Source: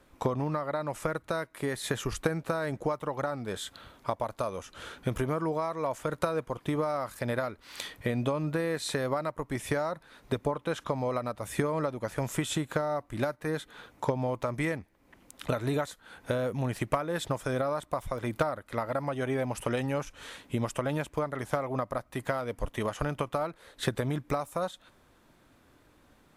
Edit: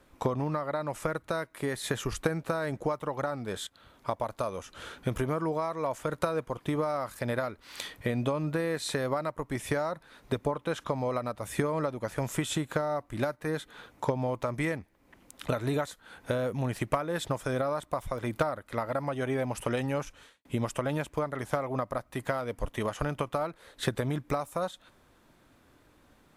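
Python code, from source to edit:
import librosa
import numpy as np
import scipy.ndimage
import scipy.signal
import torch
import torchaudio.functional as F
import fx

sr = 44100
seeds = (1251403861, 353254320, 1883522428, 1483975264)

y = fx.edit(x, sr, fx.fade_in_from(start_s=3.67, length_s=0.46, floor_db=-16.5),
    fx.fade_out_span(start_s=20.1, length_s=0.35, curve='qua'), tone=tone)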